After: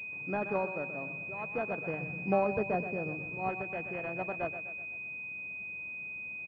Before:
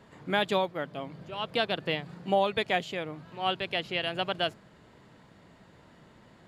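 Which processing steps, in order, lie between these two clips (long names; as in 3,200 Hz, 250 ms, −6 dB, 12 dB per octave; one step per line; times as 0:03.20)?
0:02.01–0:03.49: spectral tilt −2.5 dB per octave
repeating echo 126 ms, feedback 51%, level −11 dB
switching amplifier with a slow clock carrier 2,500 Hz
level −4.5 dB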